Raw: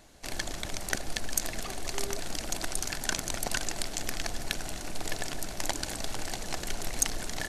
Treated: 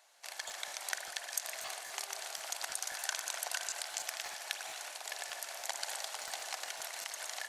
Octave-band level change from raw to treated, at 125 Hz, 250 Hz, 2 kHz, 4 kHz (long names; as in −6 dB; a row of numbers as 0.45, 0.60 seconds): below −35 dB, below −25 dB, −4.0 dB, −4.5 dB